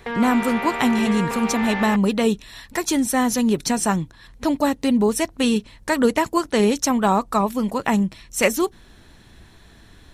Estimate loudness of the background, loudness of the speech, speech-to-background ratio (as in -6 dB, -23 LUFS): -27.0 LUFS, -21.0 LUFS, 6.0 dB